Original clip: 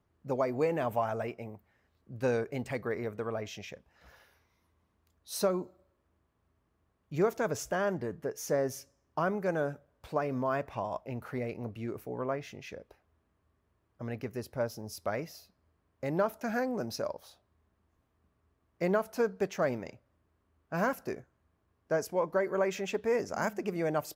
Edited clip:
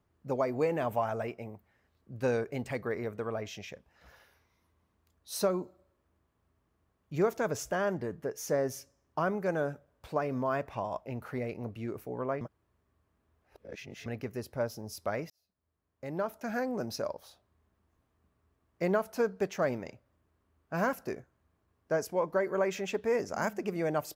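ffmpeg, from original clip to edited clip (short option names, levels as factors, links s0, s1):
-filter_complex "[0:a]asplit=4[s0][s1][s2][s3];[s0]atrim=end=12.412[s4];[s1]atrim=start=12.408:end=14.062,asetpts=PTS-STARTPTS,areverse[s5];[s2]atrim=start=14.058:end=15.3,asetpts=PTS-STARTPTS,afade=t=out:st=1.238:d=0.004:c=hsin[s6];[s3]atrim=start=15.3,asetpts=PTS-STARTPTS,afade=t=in:d=1.5[s7];[s4][s5]acrossfade=d=0.004:c1=hsin:c2=hsin[s8];[s6][s7]concat=n=2:v=0:a=1[s9];[s8][s9]acrossfade=d=0.004:c1=hsin:c2=hsin"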